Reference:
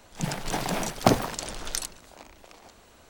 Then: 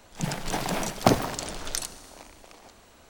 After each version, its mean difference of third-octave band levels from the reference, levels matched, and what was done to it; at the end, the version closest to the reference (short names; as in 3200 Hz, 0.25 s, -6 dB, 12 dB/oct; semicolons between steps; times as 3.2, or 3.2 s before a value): 1.0 dB: Schroeder reverb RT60 2.5 s, combs from 29 ms, DRR 14.5 dB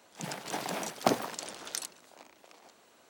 2.0 dB: HPF 230 Hz 12 dB/oct; gain -5.5 dB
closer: first